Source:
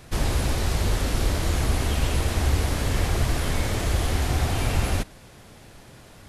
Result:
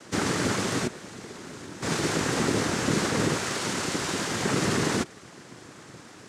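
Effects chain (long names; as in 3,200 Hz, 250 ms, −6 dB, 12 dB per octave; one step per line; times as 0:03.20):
0:00.46–0:02.23: duck −15 dB, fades 0.41 s logarithmic
0:03.36–0:04.45: parametric band 240 Hz −13 dB 1.5 octaves
cochlear-implant simulation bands 3
level +2.5 dB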